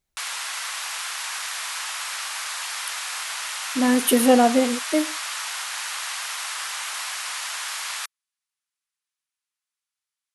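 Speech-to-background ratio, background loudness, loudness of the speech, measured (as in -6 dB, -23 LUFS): 9.0 dB, -28.5 LUFS, -19.5 LUFS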